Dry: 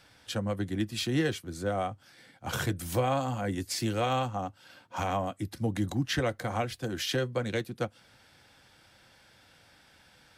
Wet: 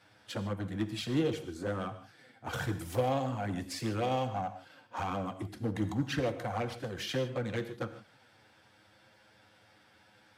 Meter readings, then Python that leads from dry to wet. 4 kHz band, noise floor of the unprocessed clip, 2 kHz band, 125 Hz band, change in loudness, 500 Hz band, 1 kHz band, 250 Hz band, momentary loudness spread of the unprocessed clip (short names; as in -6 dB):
-6.0 dB, -61 dBFS, -4.5 dB, -3.5 dB, -3.5 dB, -2.5 dB, -3.5 dB, -2.5 dB, 8 LU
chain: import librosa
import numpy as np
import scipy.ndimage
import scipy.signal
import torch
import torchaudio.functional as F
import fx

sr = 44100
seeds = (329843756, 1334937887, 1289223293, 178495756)

p1 = fx.env_flanger(x, sr, rest_ms=10.3, full_db=-24.0)
p2 = scipy.signal.sosfilt(scipy.signal.butter(2, 49.0, 'highpass', fs=sr, output='sos'), p1)
p3 = fx.high_shelf(p2, sr, hz=2800.0, db=-9.0)
p4 = 10.0 ** (-34.5 / 20.0) * (np.abs((p3 / 10.0 ** (-34.5 / 20.0) + 3.0) % 4.0 - 2.0) - 1.0)
p5 = p3 + F.gain(torch.from_numpy(p4), -8.5).numpy()
p6 = fx.low_shelf(p5, sr, hz=120.0, db=-8.0)
y = fx.rev_gated(p6, sr, seeds[0], gate_ms=180, shape='flat', drr_db=9.5)